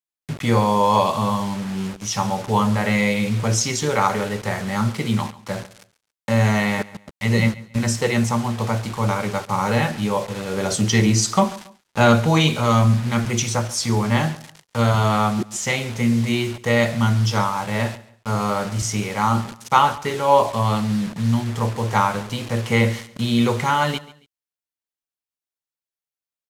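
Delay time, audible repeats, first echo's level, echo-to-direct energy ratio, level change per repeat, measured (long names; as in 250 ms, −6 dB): 139 ms, 2, −19.0 dB, −18.5 dB, −10.5 dB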